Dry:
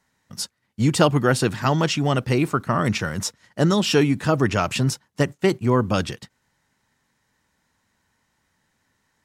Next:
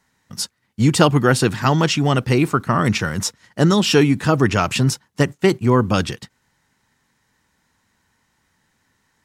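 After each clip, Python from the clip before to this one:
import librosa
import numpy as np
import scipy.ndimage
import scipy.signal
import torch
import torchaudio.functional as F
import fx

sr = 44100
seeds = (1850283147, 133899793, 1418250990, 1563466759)

y = fx.peak_eq(x, sr, hz=600.0, db=-3.5, octaves=0.39)
y = F.gain(torch.from_numpy(y), 4.0).numpy()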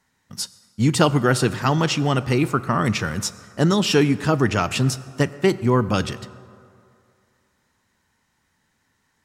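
y = fx.rev_fdn(x, sr, rt60_s=2.5, lf_ratio=0.85, hf_ratio=0.5, size_ms=76.0, drr_db=14.5)
y = F.gain(torch.from_numpy(y), -3.0).numpy()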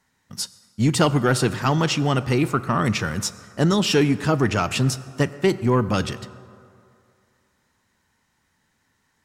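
y = 10.0 ** (-7.5 / 20.0) * np.tanh(x / 10.0 ** (-7.5 / 20.0))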